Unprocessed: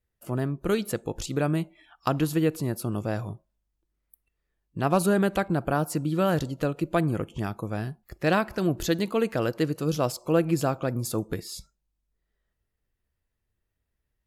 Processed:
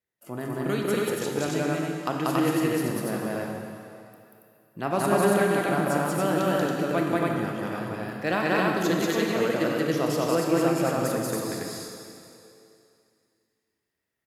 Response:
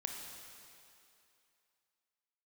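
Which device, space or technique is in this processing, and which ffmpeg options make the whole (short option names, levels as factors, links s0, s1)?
stadium PA: -filter_complex "[0:a]highpass=180,equalizer=f=2000:t=o:w=0.38:g=4.5,aecho=1:1:186.6|279.9:1|0.891[s0];[1:a]atrim=start_sample=2205[s1];[s0][s1]afir=irnorm=-1:irlink=0,volume=0.841"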